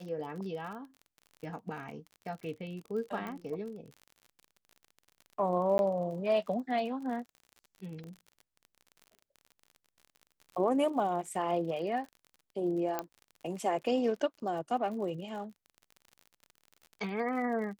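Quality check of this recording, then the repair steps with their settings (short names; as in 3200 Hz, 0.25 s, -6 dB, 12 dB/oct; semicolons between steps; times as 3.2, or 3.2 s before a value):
crackle 47/s -42 dBFS
3.27 pop -27 dBFS
5.78–5.79 gap 11 ms
8.04 pop -35 dBFS
12.99 pop -18 dBFS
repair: de-click; interpolate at 5.78, 11 ms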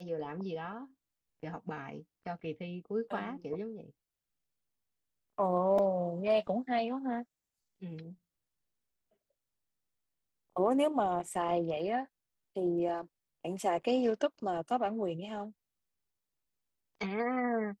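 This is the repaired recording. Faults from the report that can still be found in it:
8.04 pop
12.99 pop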